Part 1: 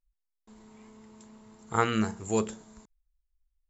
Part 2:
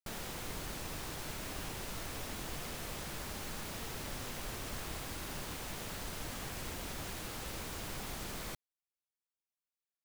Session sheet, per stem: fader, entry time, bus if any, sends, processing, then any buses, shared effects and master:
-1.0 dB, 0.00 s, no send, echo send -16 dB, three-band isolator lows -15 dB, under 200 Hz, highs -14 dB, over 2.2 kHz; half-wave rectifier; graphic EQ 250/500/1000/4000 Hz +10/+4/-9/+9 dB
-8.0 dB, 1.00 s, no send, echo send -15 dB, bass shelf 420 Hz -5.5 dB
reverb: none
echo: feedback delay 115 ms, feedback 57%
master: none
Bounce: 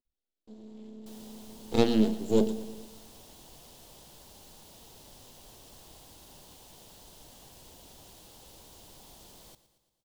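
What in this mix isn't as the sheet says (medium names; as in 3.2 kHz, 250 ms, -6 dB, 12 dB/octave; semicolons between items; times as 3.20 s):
stem 1 -1.0 dB -> +5.0 dB; master: extra high-order bell 1.7 kHz -11 dB 1.3 oct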